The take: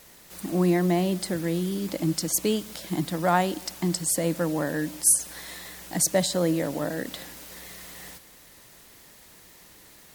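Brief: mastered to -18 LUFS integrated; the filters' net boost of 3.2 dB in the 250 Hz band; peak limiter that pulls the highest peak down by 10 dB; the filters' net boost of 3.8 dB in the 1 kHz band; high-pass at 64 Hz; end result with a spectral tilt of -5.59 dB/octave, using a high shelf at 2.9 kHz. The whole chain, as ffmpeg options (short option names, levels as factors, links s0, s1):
-af "highpass=64,equalizer=f=250:t=o:g=5,equalizer=f=1000:t=o:g=6,highshelf=f=2900:g=-8.5,volume=2.82,alimiter=limit=0.422:level=0:latency=1"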